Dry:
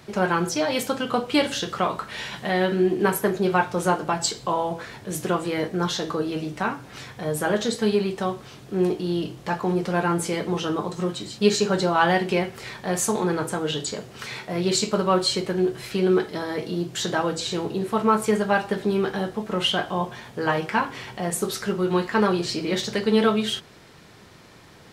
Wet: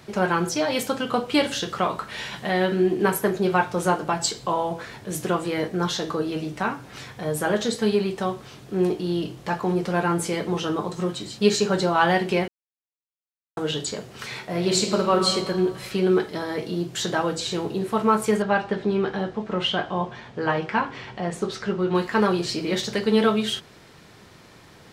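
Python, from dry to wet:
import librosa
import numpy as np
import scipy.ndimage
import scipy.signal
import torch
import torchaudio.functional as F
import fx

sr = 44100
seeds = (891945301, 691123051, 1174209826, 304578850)

y = fx.reverb_throw(x, sr, start_s=14.46, length_s=0.85, rt60_s=1.7, drr_db=5.0)
y = fx.air_absorb(y, sr, metres=110.0, at=(18.42, 21.95))
y = fx.edit(y, sr, fx.silence(start_s=12.48, length_s=1.09), tone=tone)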